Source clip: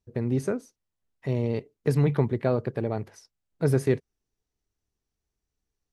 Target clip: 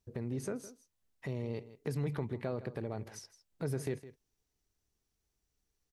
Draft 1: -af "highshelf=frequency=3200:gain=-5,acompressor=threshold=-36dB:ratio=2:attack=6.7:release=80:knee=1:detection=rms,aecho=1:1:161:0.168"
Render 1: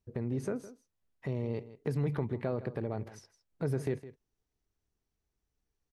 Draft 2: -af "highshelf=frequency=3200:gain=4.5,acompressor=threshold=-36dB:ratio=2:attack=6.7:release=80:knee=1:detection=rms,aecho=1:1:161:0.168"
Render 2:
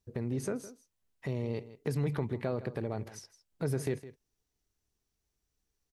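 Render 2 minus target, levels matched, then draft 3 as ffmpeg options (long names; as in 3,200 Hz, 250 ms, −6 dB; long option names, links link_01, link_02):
downward compressor: peak gain reduction −3.5 dB
-af "highshelf=frequency=3200:gain=4.5,acompressor=threshold=-43dB:ratio=2:attack=6.7:release=80:knee=1:detection=rms,aecho=1:1:161:0.168"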